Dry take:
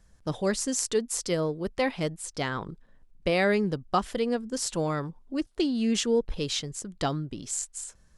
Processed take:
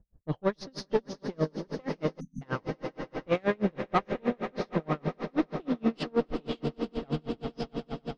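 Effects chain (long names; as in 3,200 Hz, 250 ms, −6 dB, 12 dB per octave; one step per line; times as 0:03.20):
hearing-aid frequency compression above 2,400 Hz 1.5 to 1
camcorder AGC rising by 5.1 dB per second
low-pass that shuts in the quiet parts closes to 490 Hz, open at −21 dBFS
high-shelf EQ 3,400 Hz −11 dB
tube saturation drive 21 dB, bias 0.65
echo that builds up and dies away 95 ms, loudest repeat 8, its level −14.5 dB
time-frequency box erased 0:02.20–0:02.42, 260–5,800 Hz
tremolo with a sine in dB 6.3 Hz, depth 36 dB
level +6 dB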